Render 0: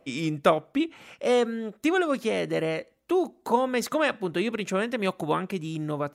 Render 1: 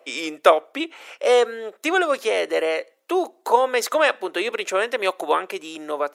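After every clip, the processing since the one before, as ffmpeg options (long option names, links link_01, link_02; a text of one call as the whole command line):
ffmpeg -i in.wav -af "highpass=frequency=410:width=0.5412,highpass=frequency=410:width=1.3066,volume=7dB" out.wav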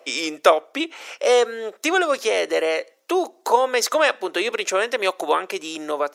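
ffmpeg -i in.wav -filter_complex "[0:a]equalizer=frequency=5600:width_type=o:width=0.76:gain=7,asplit=2[link_01][link_02];[link_02]acompressor=threshold=-27dB:ratio=6,volume=-2.5dB[link_03];[link_01][link_03]amix=inputs=2:normalize=0,volume=-1.5dB" out.wav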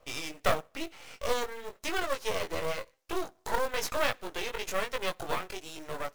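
ffmpeg -i in.wav -af "flanger=delay=17.5:depth=4.4:speed=1,aeval=exprs='max(val(0),0)':channel_layout=same,acrusher=bits=4:mode=log:mix=0:aa=0.000001,volume=-5dB" out.wav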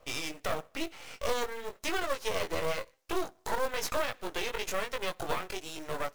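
ffmpeg -i in.wav -af "alimiter=limit=-20.5dB:level=0:latency=1:release=133,volume=2dB" out.wav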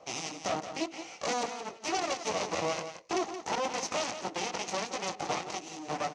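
ffmpeg -i in.wav -filter_complex "[0:a]aeval=exprs='0.126*(cos(1*acos(clip(val(0)/0.126,-1,1)))-cos(1*PI/2))+0.0141*(cos(3*acos(clip(val(0)/0.126,-1,1)))-cos(3*PI/2))+0.0631*(cos(4*acos(clip(val(0)/0.126,-1,1)))-cos(4*PI/2))+0.0316*(cos(5*acos(clip(val(0)/0.126,-1,1)))-cos(5*PI/2))+0.0224*(cos(8*acos(clip(val(0)/0.126,-1,1)))-cos(8*PI/2))':channel_layout=same,highpass=140,equalizer=frequency=190:width_type=q:width=4:gain=4,equalizer=frequency=320:width_type=q:width=4:gain=5,equalizer=frequency=760:width_type=q:width=4:gain=9,equalizer=frequency=1600:width_type=q:width=4:gain=-7,equalizer=frequency=3500:width_type=q:width=4:gain=-4,equalizer=frequency=6100:width_type=q:width=4:gain=8,lowpass=frequency=6600:width=0.5412,lowpass=frequency=6600:width=1.3066,asplit=2[link_01][link_02];[link_02]aecho=0:1:174:0.316[link_03];[link_01][link_03]amix=inputs=2:normalize=0" out.wav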